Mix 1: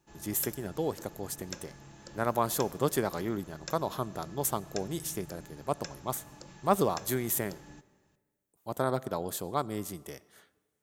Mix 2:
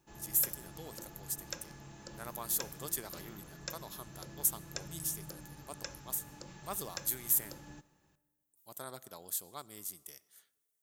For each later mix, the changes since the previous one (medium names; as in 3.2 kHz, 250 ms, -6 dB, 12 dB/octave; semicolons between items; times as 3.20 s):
speech: add pre-emphasis filter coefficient 0.9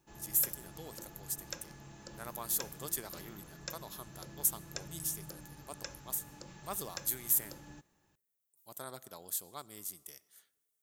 background: send off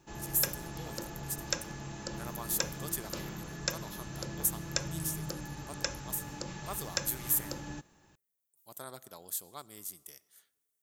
background +10.0 dB